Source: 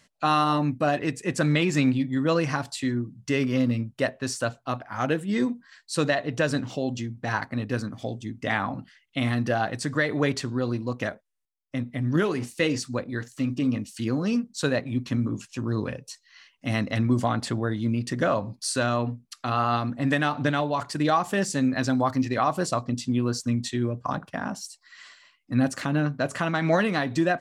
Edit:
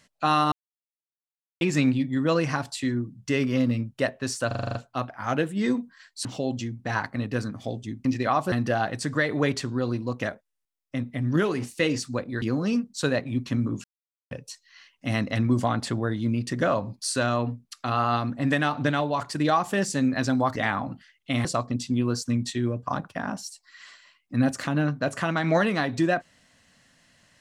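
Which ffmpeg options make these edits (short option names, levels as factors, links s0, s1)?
-filter_complex "[0:a]asplit=18[s0][s1][s2][s3][s4][s5][s6][s7][s8][s9][s10][s11][s12][s13][s14][s15][s16][s17];[s0]atrim=end=0.52,asetpts=PTS-STARTPTS,afade=t=out:st=0.516:d=0.004:c=hsin[s18];[s1]atrim=start=0.52:end=1.61,asetpts=PTS-STARTPTS,volume=0[s19];[s2]atrim=start=1.61:end=4.512,asetpts=PTS-STARTPTS,afade=t=in:d=0.004:c=hsin[s20];[s3]atrim=start=4.468:end=4.512[s21];[s4]atrim=start=4.468:end=4.512[s22];[s5]atrim=start=4.468:end=4.512[s23];[s6]atrim=start=4.468:end=4.512[s24];[s7]atrim=start=4.468:end=4.512[s25];[s8]atrim=start=4.468:end=4.512[s26];[s9]atrim=start=4.468:end=5.972[s27];[s10]atrim=start=6.628:end=8.432[s28];[s11]atrim=start=22.158:end=22.632[s29];[s12]atrim=start=9.318:end=13.222[s30];[s13]atrim=start=14.018:end=15.44,asetpts=PTS-STARTPTS,afade=t=out:st=1.418:d=0.004:c=hsin[s31];[s14]atrim=start=15.44:end=15.91,asetpts=PTS-STARTPTS,volume=0[s32];[s15]atrim=start=15.91:end=22.162,asetpts=PTS-STARTPTS,afade=t=in:d=0.004:c=hsin[s33];[s16]atrim=start=8.428:end=9.322[s34];[s17]atrim=start=22.628[s35];[s18][s19][s20]concat=n=3:v=0:a=1[s36];[s36][s21]acrossfade=d=0.004:c1=hsin:c2=hsin[s37];[s37][s22]acrossfade=d=0.004:c1=hsin:c2=hsin[s38];[s38][s23]acrossfade=d=0.004:c1=hsin:c2=hsin[s39];[s39][s24]acrossfade=d=0.004:c1=hsin:c2=hsin[s40];[s40][s25]acrossfade=d=0.004:c1=hsin:c2=hsin[s41];[s41][s26]acrossfade=d=0.004:c1=hsin:c2=hsin[s42];[s42][s27]acrossfade=d=0.004:c1=hsin:c2=hsin[s43];[s43][s28]acrossfade=d=0.004:c1=hsin:c2=hsin[s44];[s44][s29]acrossfade=d=0.004:c1=hsin:c2=hsin[s45];[s45][s30]acrossfade=d=0.004:c1=hsin:c2=hsin[s46];[s31][s32][s33]concat=n=3:v=0:a=1[s47];[s46][s47]acrossfade=d=0.004:c1=hsin:c2=hsin[s48];[s48][s34]acrossfade=d=0.004:c1=hsin:c2=hsin[s49];[s49][s35]acrossfade=d=0.004:c1=hsin:c2=hsin"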